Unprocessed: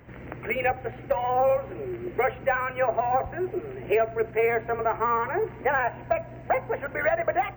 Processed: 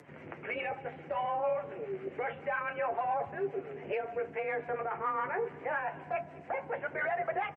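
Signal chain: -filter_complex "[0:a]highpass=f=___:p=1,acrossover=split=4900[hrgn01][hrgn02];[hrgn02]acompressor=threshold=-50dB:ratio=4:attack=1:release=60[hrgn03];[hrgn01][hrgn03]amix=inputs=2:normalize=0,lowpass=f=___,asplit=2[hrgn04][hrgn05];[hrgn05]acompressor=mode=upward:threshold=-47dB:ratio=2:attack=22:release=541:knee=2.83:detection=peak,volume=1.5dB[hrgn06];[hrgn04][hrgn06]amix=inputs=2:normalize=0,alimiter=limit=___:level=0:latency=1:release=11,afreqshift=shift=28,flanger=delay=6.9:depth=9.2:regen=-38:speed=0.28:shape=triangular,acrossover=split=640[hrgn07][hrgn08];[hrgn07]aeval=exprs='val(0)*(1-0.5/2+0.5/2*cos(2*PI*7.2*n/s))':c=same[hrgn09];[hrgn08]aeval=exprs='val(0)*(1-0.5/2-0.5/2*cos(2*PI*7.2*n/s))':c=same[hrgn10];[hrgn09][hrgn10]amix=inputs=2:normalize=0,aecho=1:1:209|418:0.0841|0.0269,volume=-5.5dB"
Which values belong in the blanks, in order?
190, 9500, -14dB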